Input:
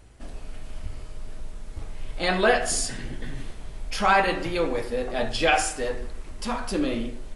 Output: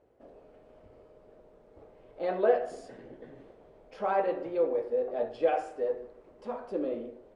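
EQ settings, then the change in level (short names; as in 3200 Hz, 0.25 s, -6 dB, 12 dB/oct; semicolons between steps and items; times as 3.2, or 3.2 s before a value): band-pass 500 Hz, Q 2.5; 0.0 dB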